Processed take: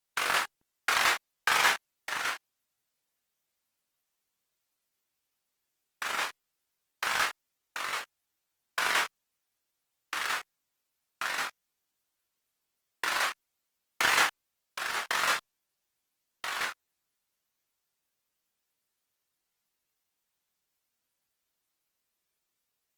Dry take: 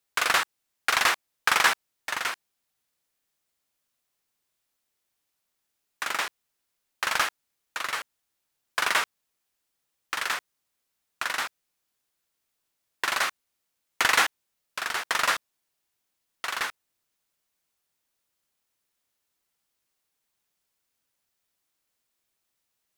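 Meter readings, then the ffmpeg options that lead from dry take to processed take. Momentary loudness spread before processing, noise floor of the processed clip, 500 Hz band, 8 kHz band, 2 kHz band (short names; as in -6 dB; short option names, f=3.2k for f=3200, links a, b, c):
12 LU, -84 dBFS, -3.0 dB, -3.5 dB, -3.0 dB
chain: -af "flanger=delay=22.5:depth=4.9:speed=0.25" -ar 48000 -c:a libopus -b:a 20k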